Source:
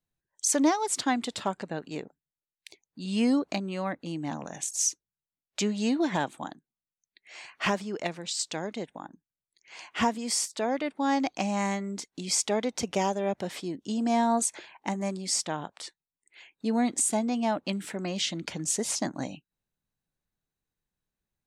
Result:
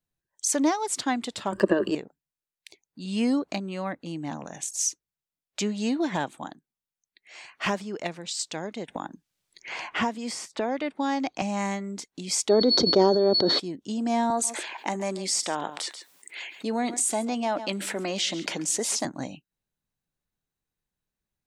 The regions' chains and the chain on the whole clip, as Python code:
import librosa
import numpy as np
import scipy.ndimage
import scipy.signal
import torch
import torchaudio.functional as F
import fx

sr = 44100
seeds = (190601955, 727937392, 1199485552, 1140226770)

y = fx.chain(x, sr, fx.ripple_eq(per_octave=1.3, db=14),
    fx.transient(attack_db=6, sustain_db=11),
    fx.small_body(hz=(420.0, 1200.0), ring_ms=25, db=16), at=(1.52, 1.95))
y = fx.chain(y, sr, fx.high_shelf(hz=8900.0, db=-11.0),
    fx.band_squash(depth_pct=70), at=(8.88, 11.42))
y = fx.curve_eq(y, sr, hz=(180.0, 340.0, 830.0, 1400.0, 2700.0, 3900.0, 9700.0), db=(0, 14, -1, 2, -17, 6, -28), at=(12.48, 13.58), fade=0.02)
y = fx.dmg_tone(y, sr, hz=4400.0, level_db=-37.0, at=(12.48, 13.58), fade=0.02)
y = fx.sustainer(y, sr, db_per_s=24.0, at=(12.48, 13.58), fade=0.02)
y = fx.chain(y, sr, fx.highpass(hz=300.0, slope=12),
    fx.echo_single(ms=137, db=-20.5),
    fx.env_flatten(amount_pct=50), at=(14.3, 19.05))